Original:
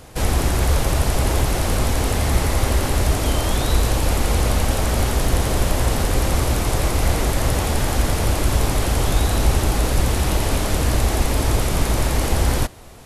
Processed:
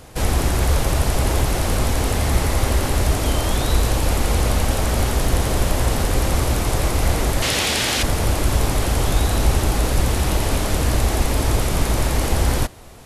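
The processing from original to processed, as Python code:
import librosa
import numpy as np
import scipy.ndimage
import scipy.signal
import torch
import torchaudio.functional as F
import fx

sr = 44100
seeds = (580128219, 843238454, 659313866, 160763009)

y = fx.weighting(x, sr, curve='D', at=(7.42, 8.03))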